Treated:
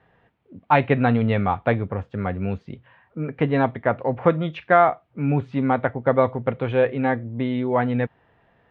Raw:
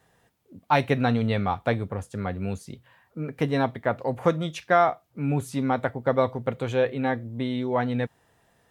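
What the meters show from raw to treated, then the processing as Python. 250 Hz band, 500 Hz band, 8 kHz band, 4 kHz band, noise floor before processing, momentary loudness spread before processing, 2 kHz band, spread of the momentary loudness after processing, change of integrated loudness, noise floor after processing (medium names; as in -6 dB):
+4.0 dB, +4.0 dB, under -25 dB, -2.5 dB, -66 dBFS, 10 LU, +4.0 dB, 10 LU, +4.0 dB, -63 dBFS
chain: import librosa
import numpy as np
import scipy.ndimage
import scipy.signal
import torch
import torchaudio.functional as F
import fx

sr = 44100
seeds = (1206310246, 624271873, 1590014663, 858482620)

y = scipy.signal.sosfilt(scipy.signal.butter(4, 2900.0, 'lowpass', fs=sr, output='sos'), x)
y = y * librosa.db_to_amplitude(4.0)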